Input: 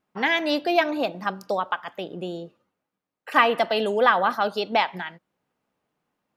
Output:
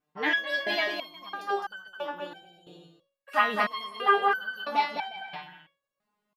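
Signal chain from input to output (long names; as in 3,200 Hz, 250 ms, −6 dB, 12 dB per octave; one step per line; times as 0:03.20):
bouncing-ball delay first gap 210 ms, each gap 0.7×, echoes 5
step-sequenced resonator 3 Hz 150–1,500 Hz
level +8 dB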